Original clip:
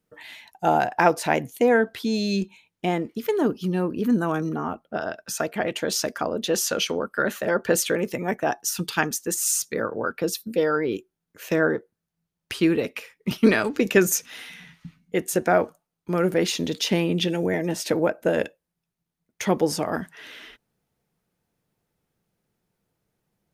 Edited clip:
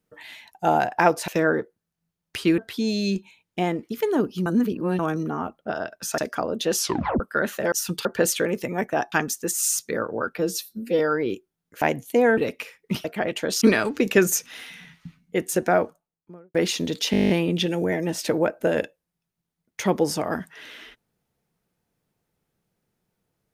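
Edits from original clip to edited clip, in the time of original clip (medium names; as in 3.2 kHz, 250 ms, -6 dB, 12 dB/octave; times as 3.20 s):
1.28–1.84 s: swap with 11.44–12.74 s
3.72–4.25 s: reverse
5.44–6.01 s: move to 13.41 s
6.62 s: tape stop 0.41 s
8.62–8.95 s: move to 7.55 s
10.21–10.62 s: stretch 1.5×
15.43–16.34 s: studio fade out
16.91 s: stutter 0.02 s, 10 plays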